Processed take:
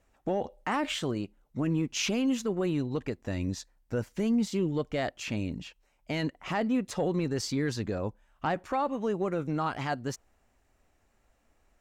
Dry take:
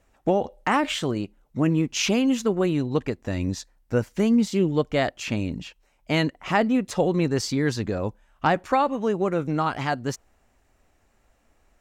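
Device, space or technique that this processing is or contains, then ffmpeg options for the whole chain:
soft clipper into limiter: -filter_complex "[0:a]asoftclip=type=tanh:threshold=0.335,alimiter=limit=0.168:level=0:latency=1:release=35,asplit=3[s0][s1][s2];[s0]afade=t=out:st=8:d=0.02[s3];[s1]adynamicequalizer=threshold=0.0112:dfrequency=1800:dqfactor=0.7:tfrequency=1800:tqfactor=0.7:attack=5:release=100:ratio=0.375:range=2.5:mode=cutabove:tftype=highshelf,afade=t=in:st=8:d=0.02,afade=t=out:st=8.88:d=0.02[s4];[s2]afade=t=in:st=8.88:d=0.02[s5];[s3][s4][s5]amix=inputs=3:normalize=0,volume=0.562"

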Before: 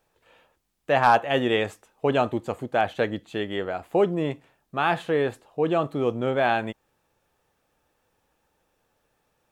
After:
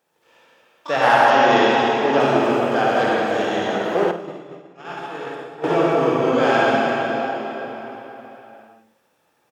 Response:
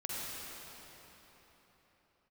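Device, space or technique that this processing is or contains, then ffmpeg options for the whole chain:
shimmer-style reverb: -filter_complex "[0:a]asplit=2[s0][s1];[s1]asetrate=88200,aresample=44100,atempo=0.5,volume=0.316[s2];[s0][s2]amix=inputs=2:normalize=0[s3];[1:a]atrim=start_sample=2205[s4];[s3][s4]afir=irnorm=-1:irlink=0,asettb=1/sr,asplit=3[s5][s6][s7];[s5]atrim=end=1.304[s8];[s6]atrim=start=1.3:end=2.2,asetpts=PTS-STARTPTS,afade=t=in:d=0.004:c=qsin,afade=t=out:st=0.896:d=0.004:c=qsin,lowpass=f=6300:w=0.5412,lowpass=f=6300:w=1.3066[s9];[s7]atrim=start=2.196[s10];[s8][s9]acrossfade=d=0.004:c1=hsin:c2=qsin[s11];[s11][s10]acrossfade=d=0.004:c1=qsin:c2=hsin,asettb=1/sr,asplit=3[s12][s13][s14];[s12]atrim=end=4.114[s15];[s13]atrim=start=4.11:end=5.64,asetpts=PTS-STARTPTS,afade=t=in:d=0.004:c=qsin,afade=t=out:st=1.526:d=0.004:c=qsin,agate=range=0.0224:threshold=0.282:ratio=3:detection=peak[s16];[s14]atrim=start=5.636[s17];[s15][s16]acrossfade=d=0.004:c1=hsin:c2=qsin[s18];[s18][s17]acrossfade=d=0.004:c1=qsin:c2=hsin,highpass=180,aecho=1:1:50|79:0.299|0.178,volume=1.41"

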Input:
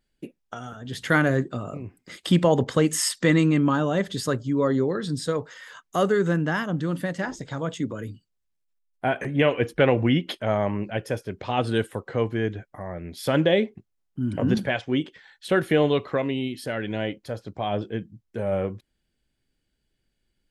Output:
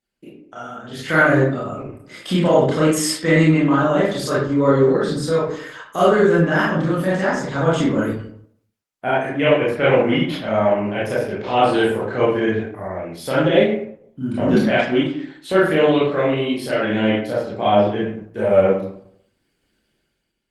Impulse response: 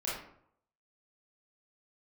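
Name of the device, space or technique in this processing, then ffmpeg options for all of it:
far-field microphone of a smart speaker: -filter_complex "[1:a]atrim=start_sample=2205[s0];[0:a][s0]afir=irnorm=-1:irlink=0,highpass=f=150:p=1,dynaudnorm=f=210:g=7:m=5.31,volume=0.794" -ar 48000 -c:a libopus -b:a 20k

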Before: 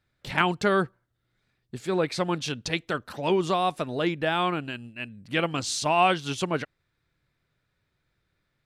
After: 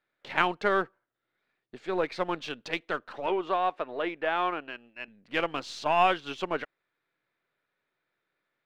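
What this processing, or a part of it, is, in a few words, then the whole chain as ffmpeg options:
crystal radio: -filter_complex "[0:a]highpass=370,lowpass=2900,aeval=exprs='if(lt(val(0),0),0.708*val(0),val(0))':c=same,asettb=1/sr,asplit=3[s0][s1][s2];[s0]atrim=end=3.264[s3];[s1]atrim=start=3.26:end=5.08,asetpts=PTS-STARTPTS,afade=t=in:d=0.004:c=qsin,afade=t=out:st=1.816:d=0.004:c=qsin,bass=f=250:g=-9,treble=f=4000:g=-11[s4];[s2]atrim=start=5.076[s5];[s3][s4]acrossfade=d=0.004:c1=hsin:c2=qsin[s6];[s6][s5]acrossfade=d=0.004:c1=qsin:c2=hsin"

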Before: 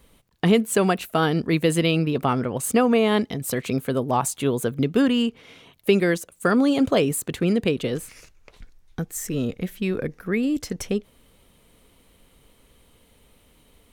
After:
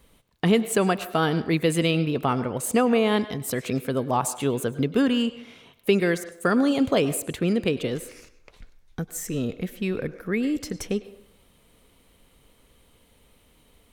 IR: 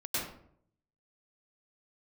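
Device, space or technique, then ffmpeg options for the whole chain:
filtered reverb send: -filter_complex "[0:a]asplit=2[s0][s1];[s1]highpass=420,lowpass=7800[s2];[1:a]atrim=start_sample=2205[s3];[s2][s3]afir=irnorm=-1:irlink=0,volume=0.126[s4];[s0][s4]amix=inputs=2:normalize=0,volume=0.794"

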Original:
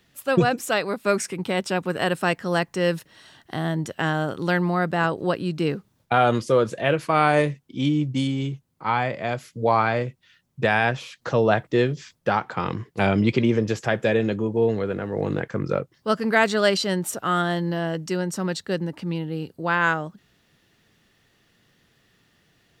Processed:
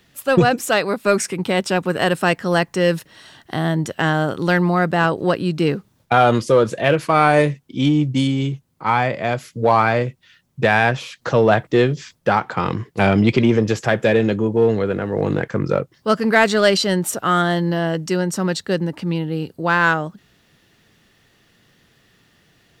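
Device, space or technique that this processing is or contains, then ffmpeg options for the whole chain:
parallel distortion: -filter_complex "[0:a]asplit=2[s0][s1];[s1]asoftclip=type=hard:threshold=0.141,volume=0.447[s2];[s0][s2]amix=inputs=2:normalize=0,volume=1.33"

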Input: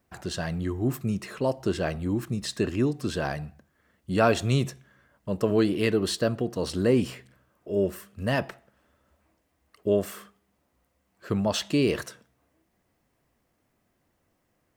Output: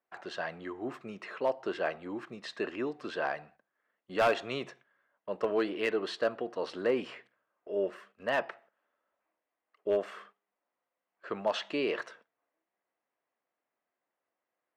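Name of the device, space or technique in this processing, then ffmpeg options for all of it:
walkie-talkie: -af "highpass=540,lowpass=2500,asoftclip=type=hard:threshold=0.1,agate=range=0.316:threshold=0.00141:ratio=16:detection=peak"

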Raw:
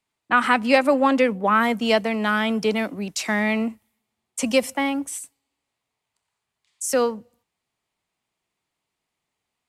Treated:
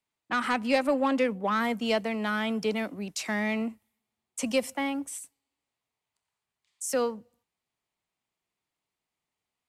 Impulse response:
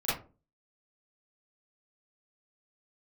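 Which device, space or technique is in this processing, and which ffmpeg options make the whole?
one-band saturation: -filter_complex "[0:a]acrossover=split=560|3600[s0][s1][s2];[s1]asoftclip=type=tanh:threshold=0.158[s3];[s0][s3][s2]amix=inputs=3:normalize=0,volume=0.473"

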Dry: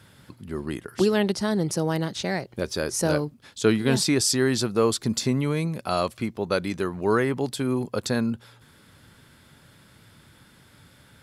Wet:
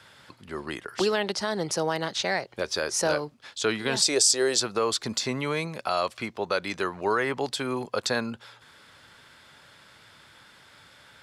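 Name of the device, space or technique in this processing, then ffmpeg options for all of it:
DJ mixer with the lows and highs turned down: -filter_complex "[0:a]acrossover=split=490 7600:gain=0.2 1 0.224[s0][s1][s2];[s0][s1][s2]amix=inputs=3:normalize=0,alimiter=limit=0.112:level=0:latency=1:release=150,asettb=1/sr,asplit=3[s3][s4][s5];[s3]atrim=end=4.024[s6];[s4]atrim=start=4.02:end=4.6,asetpts=PTS-STARTPTS,afade=t=in:d=0.004:c=qsin,afade=t=out:st=0.576:d=0.004:c=qsin,equalizer=f=125:t=o:w=1:g=-8,equalizer=f=250:t=o:w=1:g=-6,equalizer=f=500:t=o:w=1:g=11,equalizer=f=1000:t=o:w=1:g=-6,equalizer=f=2000:t=o:w=1:g=-5,equalizer=f=8000:t=o:w=1:g=9[s7];[s5]atrim=start=4.596[s8];[s6][s7]acrossfade=d=0.004:c1=hsin:c2=qsin[s9];[s9][s8]acrossfade=d=0.004:c1=qsin:c2=hsin,volume=1.68"

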